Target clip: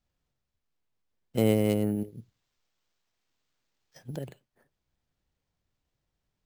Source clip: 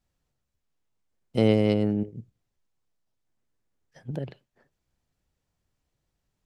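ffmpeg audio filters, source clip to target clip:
-filter_complex "[0:a]asettb=1/sr,asplit=3[a][b][c];[a]atrim=end=1.954[d];[b]atrim=start=1.95:end=4.28,asetpts=PTS-STARTPTS,afade=t=in:d=0.004:c=qsin,afade=t=out:st=2.326:d=0.004:c=qsin,bass=f=250:g=-2,treble=f=4k:g=13[e];[c]atrim=start=4.276[f];[d][e]acrossfade=d=0.004:c1=hsin:c2=qsin[g];[g][f]acrossfade=d=0.004:c1=qsin:c2=hsin,acrusher=samples=4:mix=1:aa=0.000001,volume=-3dB"

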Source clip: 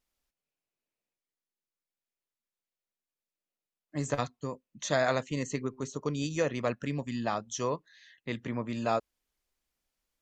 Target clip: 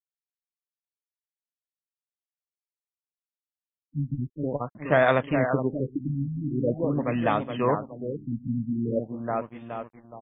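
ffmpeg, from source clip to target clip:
-filter_complex "[0:a]asplit=2[a][b];[b]adelay=420,lowpass=f=3.3k:p=1,volume=-6.5dB,asplit=2[c][d];[d]adelay=420,lowpass=f=3.3k:p=1,volume=0.51,asplit=2[e][f];[f]adelay=420,lowpass=f=3.3k:p=1,volume=0.51,asplit=2[g][h];[h]adelay=420,lowpass=f=3.3k:p=1,volume=0.51,asplit=2[i][j];[j]adelay=420,lowpass=f=3.3k:p=1,volume=0.51,asplit=2[k][l];[l]adelay=420,lowpass=f=3.3k:p=1,volume=0.51[m];[a][c][e][g][i][k][m]amix=inputs=7:normalize=0,aeval=exprs='sgn(val(0))*max(abs(val(0))-0.00178,0)':c=same,afftfilt=real='re*lt(b*sr/1024,260*pow(3700/260,0.5+0.5*sin(2*PI*0.44*pts/sr)))':imag='im*lt(b*sr/1024,260*pow(3700/260,0.5+0.5*sin(2*PI*0.44*pts/sr)))':win_size=1024:overlap=0.75,volume=7.5dB"

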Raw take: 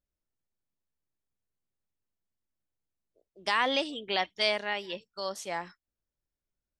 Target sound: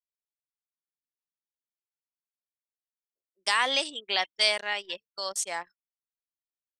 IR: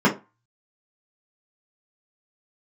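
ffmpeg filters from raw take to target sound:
-af "highpass=f=850:p=1,anlmdn=0.0631,equalizer=f=8.4k:t=o:w=0.84:g=14.5,volume=3dB"

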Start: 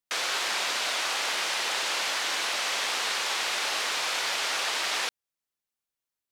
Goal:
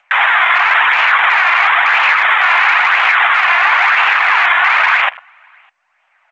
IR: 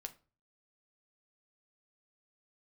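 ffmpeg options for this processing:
-filter_complex "[0:a]highpass=f=360:t=q:w=0.5412,highpass=f=360:t=q:w=1.307,lowpass=f=2.1k:t=q:w=0.5176,lowpass=f=2.1k:t=q:w=0.7071,lowpass=f=2.1k:t=q:w=1.932,afreqshift=300,acompressor=mode=upward:threshold=-39dB:ratio=2.5,flanger=delay=0.3:depth=2.6:regen=42:speed=0.99:shape=sinusoidal,aecho=1:1:604:0.0944,asplit=2[a][b];[1:a]atrim=start_sample=2205,asetrate=41895,aresample=44100[c];[b][c]afir=irnorm=-1:irlink=0,volume=-3.5dB[d];[a][d]amix=inputs=2:normalize=0,afwtdn=0.00631,alimiter=level_in=28dB:limit=-1dB:release=50:level=0:latency=1,volume=-1dB" -ar 16000 -c:a g722

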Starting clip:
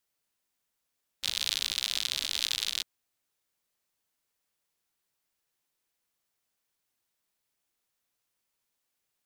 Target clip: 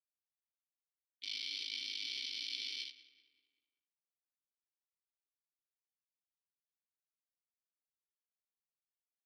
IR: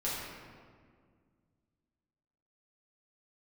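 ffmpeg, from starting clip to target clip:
-filter_complex "[0:a]superequalizer=7b=2:11b=0.316:14b=3.55:15b=0.447,asplit=2[a][b];[b]aecho=0:1:20|76:0.335|0.237[c];[a][c]amix=inputs=2:normalize=0,alimiter=limit=-16dB:level=0:latency=1:release=52,flanger=delay=15:depth=6:speed=0.33,aeval=exprs='sgn(val(0))*max(abs(val(0))-0.00188,0)':c=same,aecho=1:1:2.6:0.61,asplit=2[d][e];[e]adelay=191,lowpass=f=3k:p=1,volume=-15dB,asplit=2[f][g];[g]adelay=191,lowpass=f=3k:p=1,volume=0.54,asplit=2[h][i];[i]adelay=191,lowpass=f=3k:p=1,volume=0.54,asplit=2[j][k];[k]adelay=191,lowpass=f=3k:p=1,volume=0.54,asplit=2[l][m];[m]adelay=191,lowpass=f=3k:p=1,volume=0.54[n];[f][h][j][l][n]amix=inputs=5:normalize=0[o];[d][o]amix=inputs=2:normalize=0,asplit=2[p][q];[q]asetrate=35002,aresample=44100,atempo=1.25992,volume=-17dB[r];[p][r]amix=inputs=2:normalize=0,asplit=3[s][t][u];[s]bandpass=f=270:t=q:w=8,volume=0dB[v];[t]bandpass=f=2.29k:t=q:w=8,volume=-6dB[w];[u]bandpass=f=3.01k:t=q:w=8,volume=-9dB[x];[v][w][x]amix=inputs=3:normalize=0,volume=11.5dB"

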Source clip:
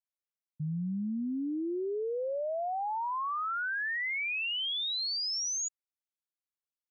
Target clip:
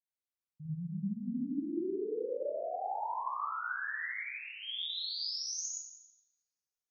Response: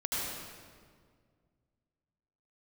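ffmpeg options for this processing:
-filter_complex "[0:a]asettb=1/sr,asplit=3[a][b][c];[a]atrim=end=3.424[d];[b]atrim=start=3.42:end=4.63,asetpts=PTS-STARTPTS,afade=t=in:d=0.004:c=qsin,afade=t=out:st=1.206:d=0.004:c=qsin,lowpass=f=2.1k:w=0.5412,lowpass=f=2.1k:w=1.3066[e];[c]atrim=start=4.626[f];[d][e]acrossfade=d=0.004:c1=hsin:c2=qsin[g];[g][f]acrossfade=d=0.004:c1=qsin:c2=hsin[h];[1:a]atrim=start_sample=2205,asetrate=66150,aresample=44100[i];[h][i]afir=irnorm=-1:irlink=0,volume=-7dB"

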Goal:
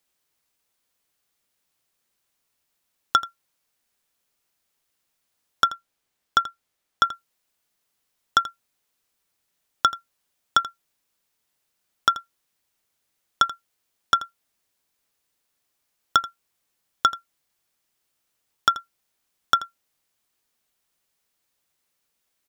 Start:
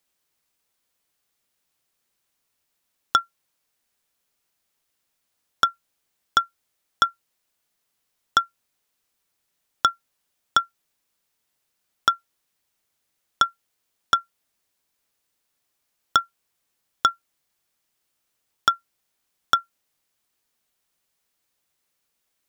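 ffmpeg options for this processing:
-filter_complex "[0:a]asettb=1/sr,asplit=3[a][b][c];[a]atrim=end=5.684[d];[b]atrim=start=5.68:end=7.05,asetpts=PTS-STARTPTS,afade=t=in:d=0.004:c=qsin,afade=t=out:st=1.366:d=0.004:c=qsin,highshelf=f=6.1k:g=-5[e];[c]atrim=start=7.046[f];[d][e]acrossfade=d=0.004:c1=hsin:c2=qsin[g];[g][f]acrossfade=d=0.004:c1=qsin:c2=hsin,asplit=2[h][i];[i]aecho=0:1:83:0.15[j];[h][j]amix=inputs=2:normalize=0"

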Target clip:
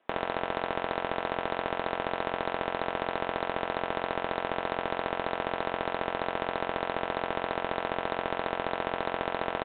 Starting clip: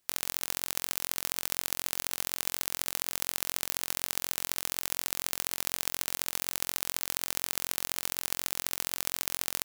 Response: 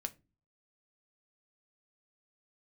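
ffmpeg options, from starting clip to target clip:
-filter_complex "[0:a]highpass=230,lowpass=3k,equalizer=f=650:w=0.54:g=13[a];[1:a]atrim=start_sample=2205,asetrate=52920,aresample=44100[b];[a][b]afir=irnorm=-1:irlink=0,aresample=8000,aeval=exprs='clip(val(0),-1,0.0355)':c=same,aresample=44100,volume=8.5dB"

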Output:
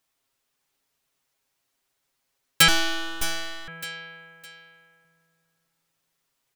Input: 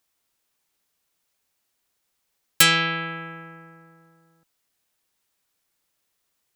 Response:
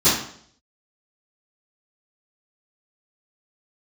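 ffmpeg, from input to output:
-filter_complex "[0:a]highshelf=f=6.6k:g=-4.5,aecho=1:1:7.4:0.66,aecho=1:1:611|1222|1833:0.355|0.103|0.0298,asettb=1/sr,asplit=3[a][b][c];[a]atrim=end=2.684[d];[b]atrim=start=2.68:end=3.68,asetpts=PTS-STARTPTS,afade=t=in:d=0.004:c=qsin,afade=t=out:st=0.996:d=0.004:c=qsin,aeval=exprs='abs(val(0))':c=same[e];[c]atrim=start=3.676[f];[d][e]acrossfade=d=0.004:c1=hsin:c2=qsin[g];[g][f]acrossfade=d=0.004:c1=qsin:c2=hsin,volume=-1dB"

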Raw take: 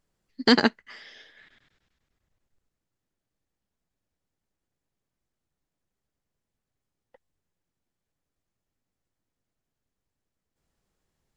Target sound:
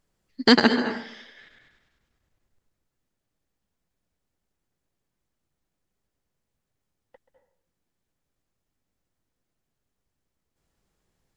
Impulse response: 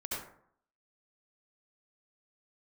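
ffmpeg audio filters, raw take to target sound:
-filter_complex "[0:a]asplit=2[a][b];[1:a]atrim=start_sample=2205,adelay=131[c];[b][c]afir=irnorm=-1:irlink=0,volume=-10.5dB[d];[a][d]amix=inputs=2:normalize=0,volume=2.5dB"

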